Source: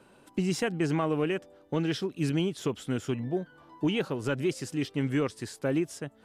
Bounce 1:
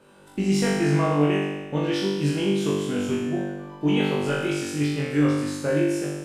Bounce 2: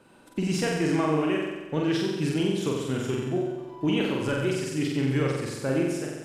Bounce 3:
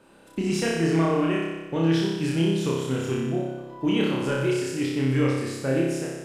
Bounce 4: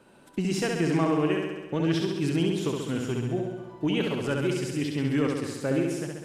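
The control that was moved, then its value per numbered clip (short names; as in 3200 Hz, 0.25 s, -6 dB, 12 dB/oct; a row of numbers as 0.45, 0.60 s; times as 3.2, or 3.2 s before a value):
flutter echo, walls apart: 3.5, 7.8, 5.2, 11.5 m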